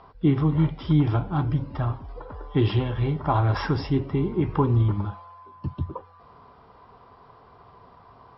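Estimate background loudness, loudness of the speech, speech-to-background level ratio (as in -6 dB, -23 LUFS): -42.5 LUFS, -25.0 LUFS, 17.5 dB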